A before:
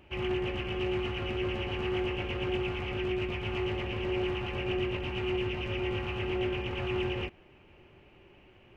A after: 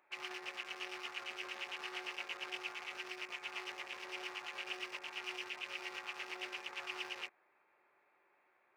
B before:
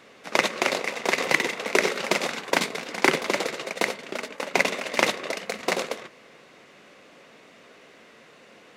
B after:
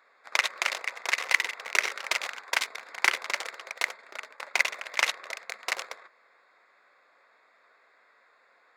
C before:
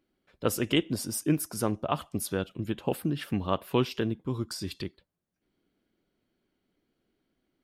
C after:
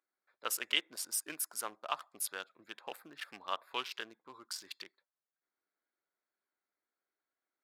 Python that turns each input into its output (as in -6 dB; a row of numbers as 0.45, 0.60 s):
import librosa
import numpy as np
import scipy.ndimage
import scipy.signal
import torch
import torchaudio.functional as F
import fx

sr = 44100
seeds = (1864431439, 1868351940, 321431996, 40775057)

y = fx.wiener(x, sr, points=15)
y = scipy.signal.sosfilt(scipy.signal.butter(2, 1300.0, 'highpass', fs=sr, output='sos'), y)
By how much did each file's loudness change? -10.5, -3.5, -8.0 LU